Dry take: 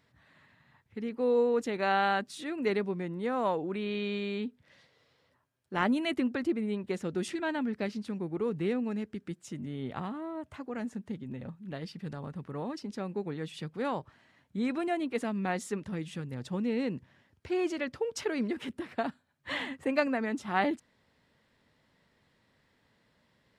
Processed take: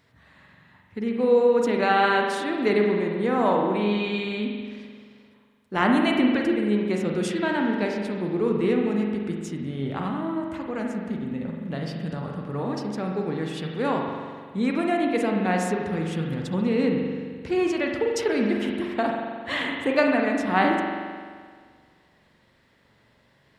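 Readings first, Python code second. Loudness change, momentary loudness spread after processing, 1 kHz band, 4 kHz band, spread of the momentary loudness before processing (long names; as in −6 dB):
+8.5 dB, 11 LU, +8.5 dB, +8.0 dB, 11 LU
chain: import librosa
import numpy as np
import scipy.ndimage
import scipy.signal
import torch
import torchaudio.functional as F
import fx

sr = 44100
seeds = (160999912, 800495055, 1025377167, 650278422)

y = fx.rev_spring(x, sr, rt60_s=1.8, pass_ms=(43,), chirp_ms=30, drr_db=0.5)
y = F.gain(torch.from_numpy(y), 6.0).numpy()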